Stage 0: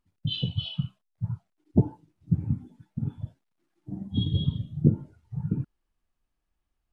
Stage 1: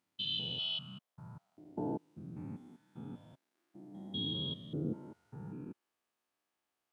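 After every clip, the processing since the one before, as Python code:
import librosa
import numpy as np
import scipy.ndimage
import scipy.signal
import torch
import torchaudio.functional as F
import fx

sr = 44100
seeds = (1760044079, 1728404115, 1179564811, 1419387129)

y = fx.spec_steps(x, sr, hold_ms=200)
y = scipy.signal.sosfilt(scipy.signal.butter(2, 370.0, 'highpass', fs=sr, output='sos'), y)
y = F.gain(torch.from_numpy(y), 3.0).numpy()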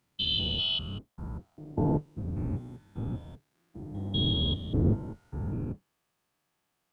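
y = fx.octave_divider(x, sr, octaves=1, level_db=4.0)
y = F.gain(torch.from_numpy(y), 7.5).numpy()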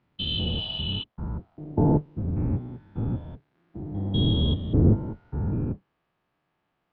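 y = fx.spec_repair(x, sr, seeds[0], start_s=0.48, length_s=0.53, low_hz=860.0, high_hz=4300.0, source='before')
y = fx.air_absorb(y, sr, metres=360.0)
y = F.gain(torch.from_numpy(y), 6.5).numpy()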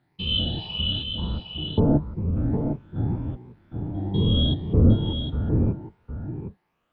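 y = fx.spec_ripple(x, sr, per_octave=0.81, drift_hz=2.0, depth_db=13)
y = y + 10.0 ** (-7.0 / 20.0) * np.pad(y, (int(759 * sr / 1000.0), 0))[:len(y)]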